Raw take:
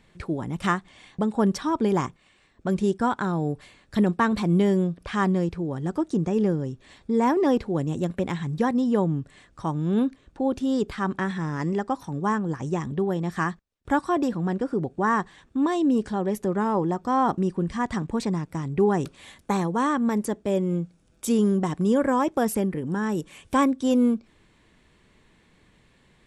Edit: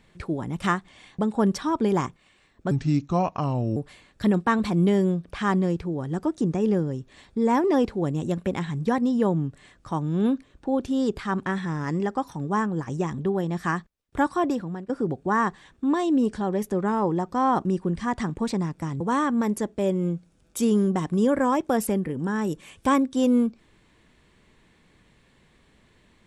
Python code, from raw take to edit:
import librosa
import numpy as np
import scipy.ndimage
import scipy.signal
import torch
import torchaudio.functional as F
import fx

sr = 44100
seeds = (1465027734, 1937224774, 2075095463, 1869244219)

y = fx.edit(x, sr, fx.speed_span(start_s=2.71, length_s=0.78, speed=0.74),
    fx.fade_out_to(start_s=14.18, length_s=0.44, floor_db=-16.5),
    fx.cut(start_s=18.73, length_s=0.95), tone=tone)